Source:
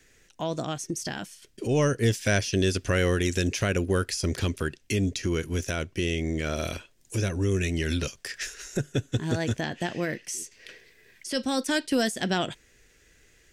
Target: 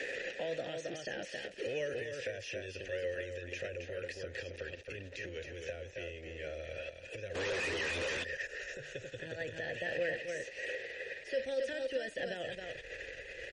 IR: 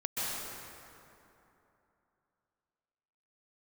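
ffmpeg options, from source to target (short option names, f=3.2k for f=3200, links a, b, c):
-filter_complex "[0:a]aeval=exprs='val(0)+0.5*0.02*sgn(val(0))':c=same,acrossover=split=140|1200|6500[a][b][c][d];[a]acompressor=threshold=-35dB:ratio=4[e];[b]acompressor=threshold=-38dB:ratio=4[f];[c]acompressor=threshold=-42dB:ratio=4[g];[d]acompressor=threshold=-44dB:ratio=4[h];[e][f][g][h]amix=inputs=4:normalize=0,asubboost=boost=12:cutoff=62,acompressor=threshold=-27dB:ratio=5,asplit=2[i][j];[j]aecho=0:1:270:0.531[k];[i][k]amix=inputs=2:normalize=0,alimiter=level_in=4dB:limit=-24dB:level=0:latency=1:release=23,volume=-4dB,asplit=3[l][m][n];[l]bandpass=f=530:t=q:w=8,volume=0dB[o];[m]bandpass=f=1.84k:t=q:w=8,volume=-6dB[p];[n]bandpass=f=2.48k:t=q:w=8,volume=-9dB[q];[o][p][q]amix=inputs=3:normalize=0,highshelf=f=11k:g=-5.5,asplit=3[r][s][t];[r]afade=t=out:st=7.34:d=0.02[u];[s]asplit=2[v][w];[w]highpass=f=720:p=1,volume=37dB,asoftclip=type=tanh:threshold=-43dB[x];[v][x]amix=inputs=2:normalize=0,lowpass=f=4k:p=1,volume=-6dB,afade=t=in:st=7.34:d=0.02,afade=t=out:st=8.23:d=0.02[y];[t]afade=t=in:st=8.23:d=0.02[z];[u][y][z]amix=inputs=3:normalize=0,volume=14.5dB" -ar 48000 -c:a libmp3lame -b:a 40k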